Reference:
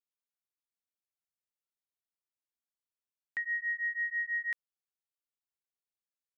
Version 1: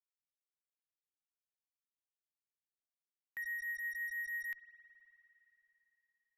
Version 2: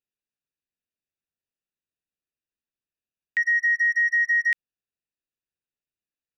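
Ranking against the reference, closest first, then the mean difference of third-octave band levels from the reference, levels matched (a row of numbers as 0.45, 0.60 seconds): 2, 1; 1.5, 5.0 decibels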